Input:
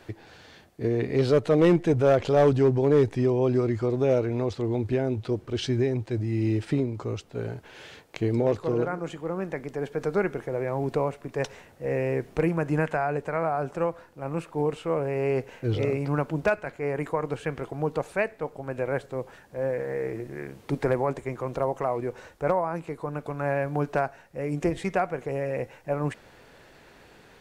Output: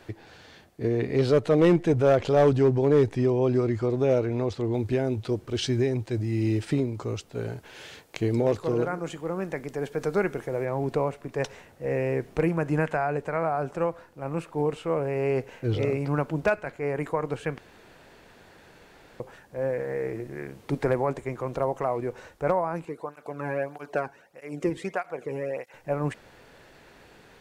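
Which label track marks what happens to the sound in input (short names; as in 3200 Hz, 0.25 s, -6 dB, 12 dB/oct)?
4.740000	10.650000	high shelf 4700 Hz +7 dB
17.580000	19.200000	room tone
22.850000	25.740000	tape flanging out of phase nulls at 1.6 Hz, depth 1.7 ms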